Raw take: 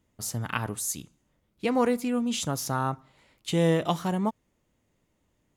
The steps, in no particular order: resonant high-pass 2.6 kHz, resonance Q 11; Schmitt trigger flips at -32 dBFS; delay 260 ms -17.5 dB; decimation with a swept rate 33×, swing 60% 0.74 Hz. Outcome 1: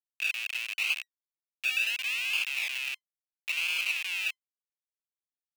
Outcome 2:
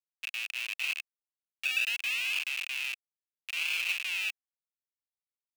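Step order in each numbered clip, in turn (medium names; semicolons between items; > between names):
delay > Schmitt trigger > decimation with a swept rate > resonant high-pass; decimation with a swept rate > delay > Schmitt trigger > resonant high-pass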